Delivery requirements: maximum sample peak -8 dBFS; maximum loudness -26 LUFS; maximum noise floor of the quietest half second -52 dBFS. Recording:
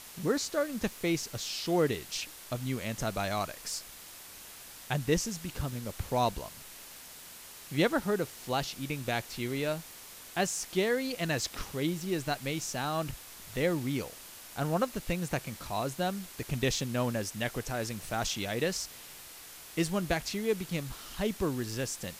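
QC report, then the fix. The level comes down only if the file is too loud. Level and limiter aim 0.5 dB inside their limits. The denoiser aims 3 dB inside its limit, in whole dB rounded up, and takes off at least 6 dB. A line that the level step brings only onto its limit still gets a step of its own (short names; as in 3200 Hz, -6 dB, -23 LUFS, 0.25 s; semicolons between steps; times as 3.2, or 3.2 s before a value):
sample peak -13.0 dBFS: OK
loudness -33.0 LUFS: OK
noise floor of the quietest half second -49 dBFS: fail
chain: denoiser 6 dB, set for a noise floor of -49 dBFS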